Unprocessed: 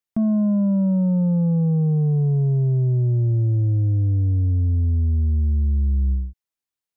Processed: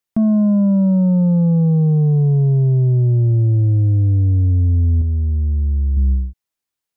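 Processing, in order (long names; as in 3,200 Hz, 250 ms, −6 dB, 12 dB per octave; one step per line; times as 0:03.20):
0:05.01–0:05.97: dynamic equaliser 160 Hz, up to −8 dB, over −36 dBFS, Q 0.77
level +5 dB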